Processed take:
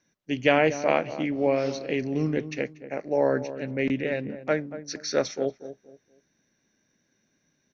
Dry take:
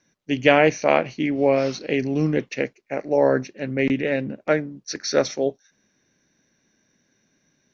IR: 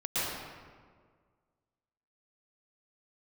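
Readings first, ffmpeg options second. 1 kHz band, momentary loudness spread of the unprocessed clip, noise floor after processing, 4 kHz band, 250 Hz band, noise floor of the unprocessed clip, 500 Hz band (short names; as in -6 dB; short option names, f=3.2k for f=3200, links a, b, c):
-5.0 dB, 11 LU, -73 dBFS, -5.0 dB, -4.5 dB, -69 dBFS, -4.5 dB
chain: -filter_complex "[0:a]asplit=2[a][b];[b]adelay=235,lowpass=f=910:p=1,volume=-11.5dB,asplit=2[c][d];[d]adelay=235,lowpass=f=910:p=1,volume=0.3,asplit=2[e][f];[f]adelay=235,lowpass=f=910:p=1,volume=0.3[g];[a][c][e][g]amix=inputs=4:normalize=0,volume=-5dB"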